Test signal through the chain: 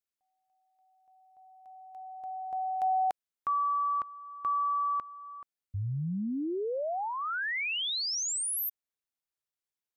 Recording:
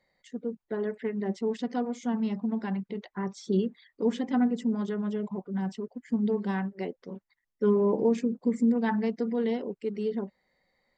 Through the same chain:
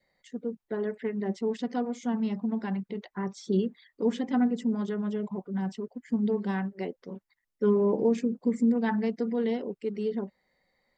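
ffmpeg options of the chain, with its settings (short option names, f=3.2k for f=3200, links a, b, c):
-af "adynamicequalizer=threshold=0.00501:dfrequency=1000:dqfactor=3.5:tfrequency=1000:tqfactor=3.5:attack=5:release=100:ratio=0.375:range=2.5:mode=cutabove:tftype=bell"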